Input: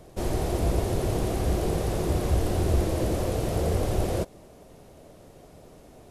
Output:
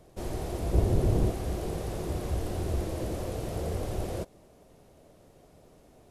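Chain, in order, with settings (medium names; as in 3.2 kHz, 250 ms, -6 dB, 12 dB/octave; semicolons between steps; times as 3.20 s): 0.73–1.31 s: bass shelf 460 Hz +10.5 dB; trim -7 dB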